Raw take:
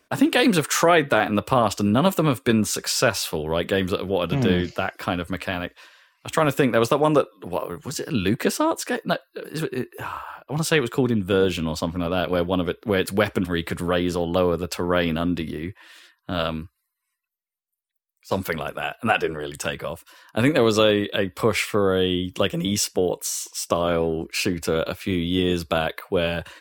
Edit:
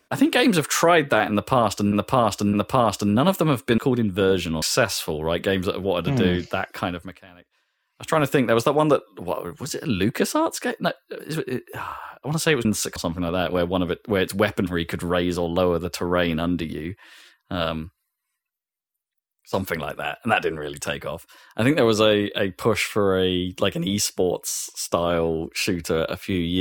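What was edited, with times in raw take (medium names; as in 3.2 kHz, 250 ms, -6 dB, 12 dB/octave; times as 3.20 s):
1.31–1.92 s: loop, 3 plays
2.56–2.87 s: swap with 10.90–11.74 s
5.06–6.42 s: dip -20 dB, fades 0.39 s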